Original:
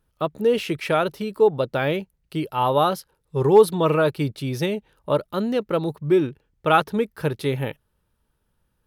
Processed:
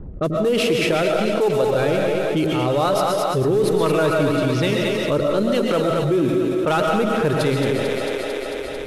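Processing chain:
variable-slope delta modulation 64 kbit/s
harmonic and percussive parts rebalanced percussive +5 dB
in parallel at −7.5 dB: gain into a clipping stage and back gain 17.5 dB
on the sum: rotating-speaker cabinet horn 1.2 Hz
low-pass that shuts in the quiet parts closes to 400 Hz, open at −18.5 dBFS
echo with a time of its own for lows and highs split 330 Hz, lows 87 ms, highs 223 ms, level −6.5 dB
on a send at −4 dB: convolution reverb RT60 0.40 s, pre-delay 90 ms
on the sum: envelope flattener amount 70%
level −5.5 dB

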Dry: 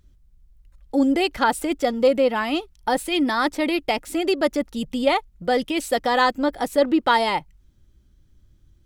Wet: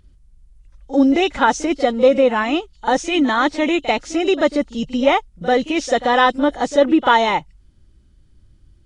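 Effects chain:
hearing-aid frequency compression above 2,700 Hz 1.5 to 1
echo ahead of the sound 41 ms −15 dB
level +4.5 dB

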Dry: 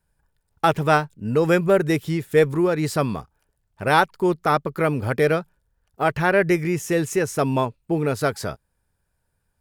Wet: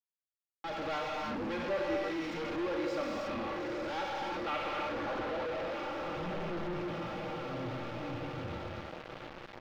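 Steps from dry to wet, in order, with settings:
wavefolder on the positive side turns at −13.5 dBFS
volume swells 360 ms
low-pass filter sweep 6,900 Hz → 130 Hz, 0:04.02–0:06.31
in parallel at 0 dB: downward compressor, threshold −28 dBFS, peak gain reduction 14 dB
on the sum: bass and treble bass −12 dB, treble +4 dB
mains-hum notches 50/100/150/200/250 Hz
comb filter 3.6 ms, depth 84%
on a send: feedback delay with all-pass diffusion 915 ms, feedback 65%, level −15 dB
on the sum: reverb whose tail is shaped and stops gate 360 ms flat, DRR −1.5 dB
log-companded quantiser 2 bits
soft clipping −18.5 dBFS, distortion 1 dB
high-frequency loss of the air 280 metres
level −9 dB

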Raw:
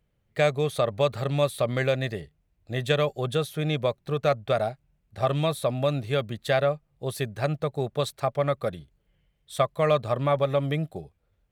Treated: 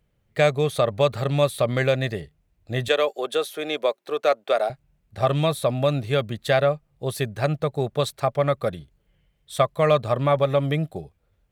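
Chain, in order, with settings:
0:02.88–0:04.70: high-pass filter 320 Hz 24 dB per octave
level +3.5 dB

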